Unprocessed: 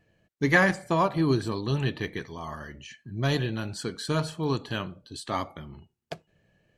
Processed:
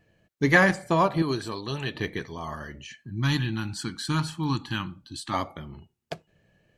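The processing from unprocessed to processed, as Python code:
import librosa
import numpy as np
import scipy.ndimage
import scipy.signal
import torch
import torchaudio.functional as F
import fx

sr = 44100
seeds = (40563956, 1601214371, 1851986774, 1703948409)

y = fx.low_shelf(x, sr, hz=450.0, db=-9.5, at=(1.22, 1.95))
y = fx.spec_box(y, sr, start_s=3.11, length_s=2.23, low_hz=350.0, high_hz=760.0, gain_db=-17)
y = y * 10.0 ** (2.0 / 20.0)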